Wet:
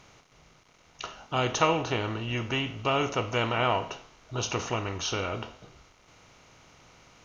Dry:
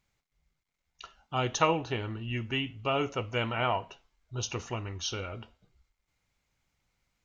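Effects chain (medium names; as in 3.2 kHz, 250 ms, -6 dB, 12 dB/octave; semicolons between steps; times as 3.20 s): spectral levelling over time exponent 0.6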